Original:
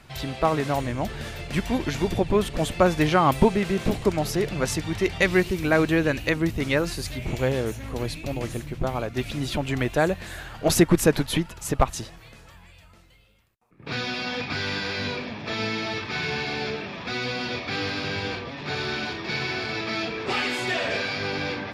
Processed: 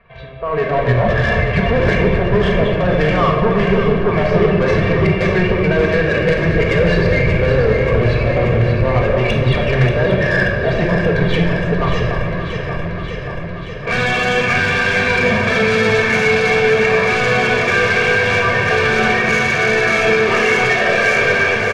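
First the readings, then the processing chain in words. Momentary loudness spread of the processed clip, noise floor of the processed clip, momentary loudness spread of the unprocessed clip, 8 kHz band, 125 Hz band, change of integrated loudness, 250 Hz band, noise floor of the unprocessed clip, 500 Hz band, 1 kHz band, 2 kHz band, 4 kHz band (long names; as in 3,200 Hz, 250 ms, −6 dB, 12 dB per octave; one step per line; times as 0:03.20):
5 LU, −24 dBFS, 10 LU, +1.0 dB, +12.5 dB, +11.0 dB, +7.0 dB, −50 dBFS, +11.5 dB, +9.0 dB, +14.5 dB, +6.0 dB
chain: low-pass filter 2,400 Hz 24 dB per octave
noise reduction from a noise print of the clip's start 7 dB
low-shelf EQ 80 Hz −9 dB
comb filter 1.8 ms, depth 91%
reversed playback
downward compressor 6 to 1, threshold −30 dBFS, peak gain reduction 18.5 dB
reversed playback
brickwall limiter −28 dBFS, peak gain reduction 10 dB
automatic gain control gain up to 16.5 dB
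soft clipping −18.5 dBFS, distortion −13 dB
on a send: delay that swaps between a low-pass and a high-pass 291 ms, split 1,200 Hz, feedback 86%, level −6 dB
on the sum: rectangular room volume 1,400 cubic metres, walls mixed, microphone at 1.7 metres
level +4.5 dB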